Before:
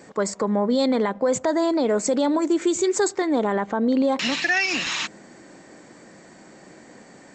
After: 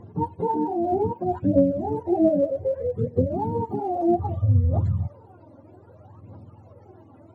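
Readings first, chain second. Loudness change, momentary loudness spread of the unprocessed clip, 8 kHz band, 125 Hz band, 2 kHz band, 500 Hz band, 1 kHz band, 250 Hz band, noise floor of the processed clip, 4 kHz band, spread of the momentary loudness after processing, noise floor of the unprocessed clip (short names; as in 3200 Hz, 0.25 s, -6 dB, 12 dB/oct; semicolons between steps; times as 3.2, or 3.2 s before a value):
-2.0 dB, 4 LU, under -35 dB, +15.5 dB, under -30 dB, -2.0 dB, 0.0 dB, -2.5 dB, -51 dBFS, under -35 dB, 7 LU, -48 dBFS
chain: spectrum mirrored in octaves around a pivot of 430 Hz; phaser 0.63 Hz, delay 3.7 ms, feedback 60%; gain -1.5 dB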